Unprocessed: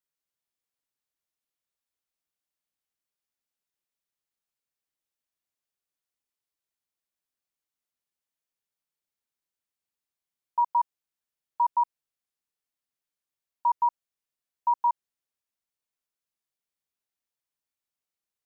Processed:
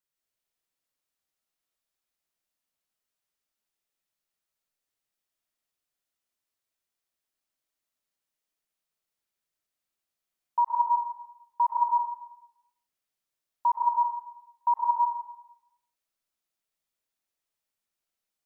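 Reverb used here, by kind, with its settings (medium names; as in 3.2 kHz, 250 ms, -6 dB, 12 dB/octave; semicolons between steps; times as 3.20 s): algorithmic reverb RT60 0.83 s, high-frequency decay 0.95×, pre-delay 80 ms, DRR -0.5 dB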